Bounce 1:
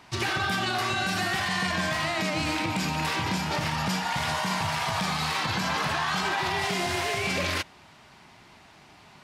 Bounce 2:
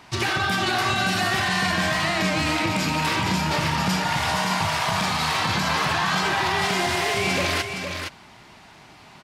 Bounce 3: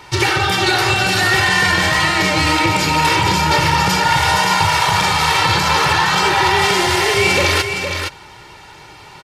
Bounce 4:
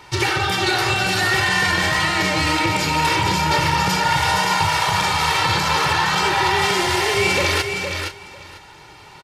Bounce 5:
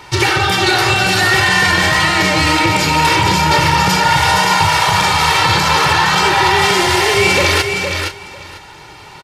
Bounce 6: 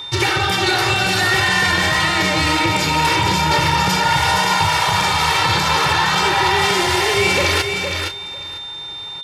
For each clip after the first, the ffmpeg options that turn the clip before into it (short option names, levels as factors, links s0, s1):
-af "aecho=1:1:465:0.473,volume=1.58"
-af "aecho=1:1:2.2:0.7,volume=2.24"
-af "aecho=1:1:497:0.168,volume=0.631"
-af "acontrast=23,volume=1.19"
-af "aeval=exprs='val(0)+0.0631*sin(2*PI*3600*n/s)':c=same,volume=0.631"